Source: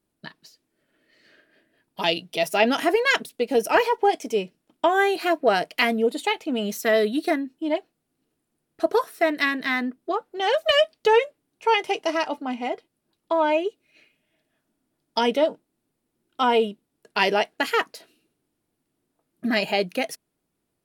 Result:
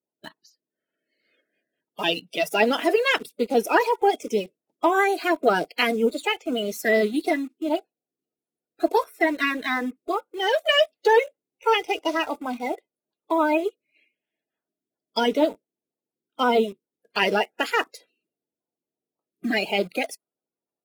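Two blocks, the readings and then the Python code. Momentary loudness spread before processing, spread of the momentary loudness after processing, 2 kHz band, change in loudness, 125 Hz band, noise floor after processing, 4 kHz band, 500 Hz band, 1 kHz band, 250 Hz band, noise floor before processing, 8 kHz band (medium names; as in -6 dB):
9 LU, 9 LU, 0.0 dB, -0.5 dB, no reading, under -85 dBFS, -0.5 dB, -0.5 dB, -0.5 dB, +0.5 dB, -78 dBFS, -1.0 dB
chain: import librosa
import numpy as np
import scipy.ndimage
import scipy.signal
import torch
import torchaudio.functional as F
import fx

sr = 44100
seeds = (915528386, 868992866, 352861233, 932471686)

p1 = fx.spec_quant(x, sr, step_db=30)
p2 = scipy.signal.sosfilt(scipy.signal.butter(2, 270.0, 'highpass', fs=sr, output='sos'), p1)
p3 = fx.low_shelf(p2, sr, hz=370.0, db=6.5)
p4 = fx.quant_dither(p3, sr, seeds[0], bits=6, dither='none')
p5 = p3 + (p4 * librosa.db_to_amplitude(-7.0))
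p6 = fx.vibrato(p5, sr, rate_hz=11.0, depth_cents=25.0)
p7 = fx.noise_reduce_blind(p6, sr, reduce_db=11)
y = p7 * librosa.db_to_amplitude(-4.0)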